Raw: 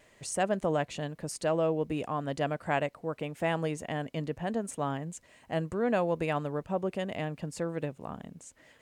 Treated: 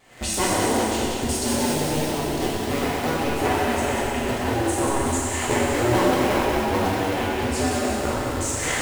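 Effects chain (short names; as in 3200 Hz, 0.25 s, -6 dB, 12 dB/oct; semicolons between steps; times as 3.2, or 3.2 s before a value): cycle switcher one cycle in 2, inverted; recorder AGC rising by 63 dB/s; 0.7–2.8 bell 1200 Hz -10.5 dB 1.4 oct; thinning echo 0.186 s, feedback 64%, high-pass 500 Hz, level -5.5 dB; reverb RT60 2.1 s, pre-delay 3 ms, DRR -7 dB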